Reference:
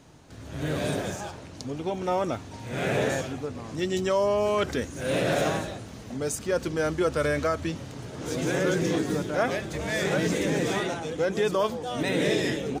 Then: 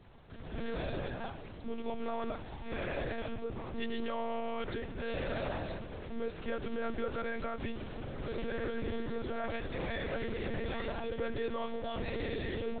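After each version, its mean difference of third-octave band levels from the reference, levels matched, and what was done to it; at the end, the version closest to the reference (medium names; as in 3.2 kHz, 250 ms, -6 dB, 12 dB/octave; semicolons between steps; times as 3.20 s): 10.0 dB: peak limiter -24.5 dBFS, peak gain reduction 11 dB; on a send: echo that smears into a reverb 1472 ms, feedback 55%, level -13 dB; on the sum: monotone LPC vocoder at 8 kHz 230 Hz; trim -3.5 dB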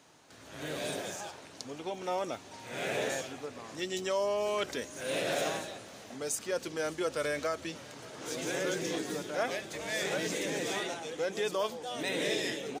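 4.5 dB: high-pass 730 Hz 6 dB/octave; dynamic bell 1.3 kHz, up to -5 dB, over -43 dBFS, Q 1.1; on a send: delay 579 ms -23 dB; on the sum: trim -1.5 dB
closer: second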